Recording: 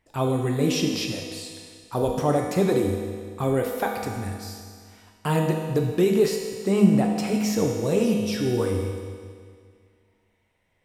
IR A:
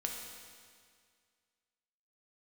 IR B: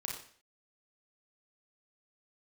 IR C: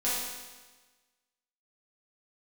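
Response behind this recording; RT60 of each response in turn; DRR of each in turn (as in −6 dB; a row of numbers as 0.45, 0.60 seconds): A; 2.0, 0.50, 1.3 seconds; 0.5, −1.5, −10.5 decibels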